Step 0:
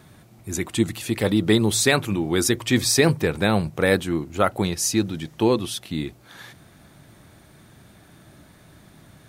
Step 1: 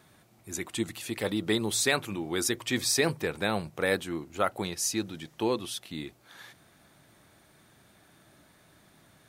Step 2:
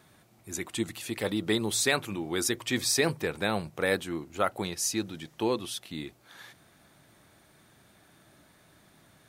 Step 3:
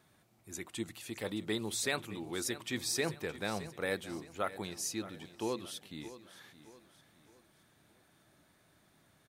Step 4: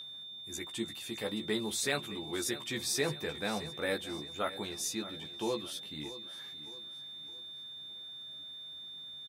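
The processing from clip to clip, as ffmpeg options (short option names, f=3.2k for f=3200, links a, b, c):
-af "lowshelf=f=250:g=-9.5,volume=-6dB"
-af anull
-af "aecho=1:1:617|1234|1851|2468:0.178|0.0729|0.0299|0.0123,volume=-8dB"
-filter_complex "[0:a]aeval=exprs='val(0)+0.00891*sin(2*PI*3600*n/s)':c=same,asplit=2[a][b];[b]adelay=14,volume=-4dB[c];[a][c]amix=inputs=2:normalize=0"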